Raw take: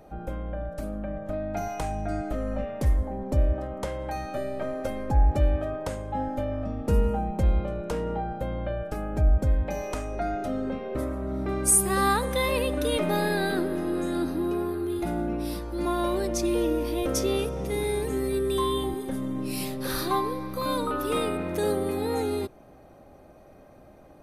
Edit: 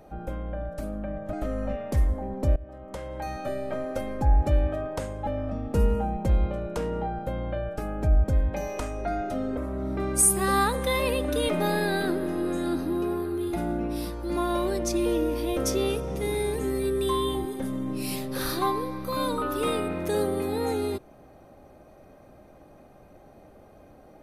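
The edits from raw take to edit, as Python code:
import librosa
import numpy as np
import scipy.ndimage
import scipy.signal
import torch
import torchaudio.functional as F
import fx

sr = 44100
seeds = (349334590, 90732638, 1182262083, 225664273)

y = fx.edit(x, sr, fx.cut(start_s=1.33, length_s=0.89),
    fx.fade_in_from(start_s=3.45, length_s=0.81, floor_db=-20.5),
    fx.cut(start_s=6.16, length_s=0.25),
    fx.cut(start_s=10.71, length_s=0.35), tone=tone)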